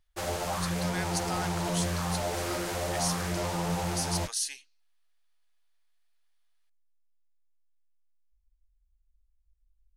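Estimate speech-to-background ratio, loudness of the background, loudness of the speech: -4.5 dB, -31.5 LUFS, -36.0 LUFS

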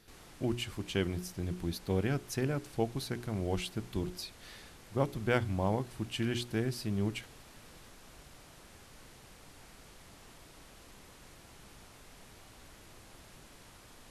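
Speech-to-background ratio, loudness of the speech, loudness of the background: 19.5 dB, -35.0 LUFS, -54.5 LUFS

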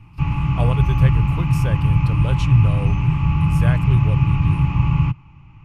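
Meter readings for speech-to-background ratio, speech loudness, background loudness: -4.0 dB, -23.0 LUFS, -19.0 LUFS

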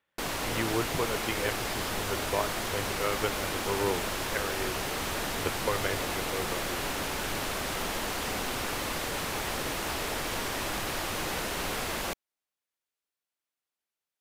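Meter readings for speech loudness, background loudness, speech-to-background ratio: -35.0 LUFS, -32.0 LUFS, -3.0 dB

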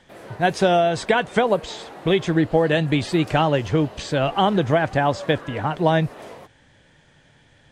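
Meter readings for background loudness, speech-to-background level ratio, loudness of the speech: -40.0 LUFS, 19.0 dB, -21.0 LUFS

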